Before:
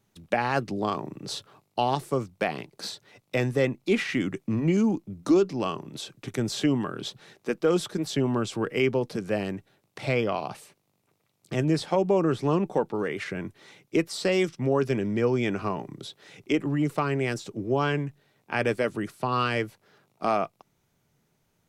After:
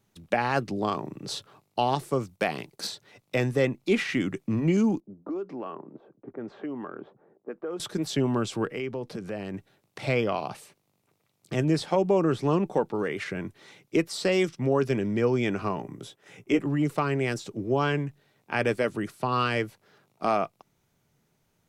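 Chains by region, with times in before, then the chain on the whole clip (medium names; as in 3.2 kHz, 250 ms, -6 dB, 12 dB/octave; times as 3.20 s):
2.23–2.87 s: gate -60 dBFS, range -7 dB + treble shelf 5.5 kHz +7 dB
5.00–7.80 s: level-controlled noise filter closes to 430 Hz, open at -18.5 dBFS + three-band isolator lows -19 dB, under 220 Hz, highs -19 dB, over 2 kHz + compression 3:1, threshold -33 dBFS
8.66–9.54 s: treble shelf 4.4 kHz -5.5 dB + compression 2.5:1, threshold -32 dBFS
15.82–16.59 s: peaking EQ 4.2 kHz -11.5 dB 0.52 oct + gate -54 dBFS, range -8 dB + doubling 17 ms -7 dB
whole clip: none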